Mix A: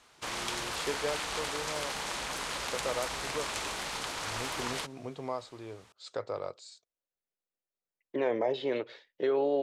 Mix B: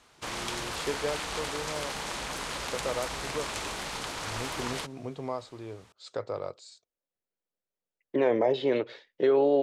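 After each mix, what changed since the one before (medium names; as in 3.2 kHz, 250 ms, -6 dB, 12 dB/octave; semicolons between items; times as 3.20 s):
second voice +3.0 dB; master: add bass shelf 410 Hz +5 dB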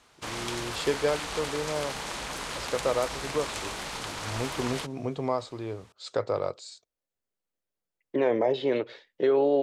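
first voice +6.0 dB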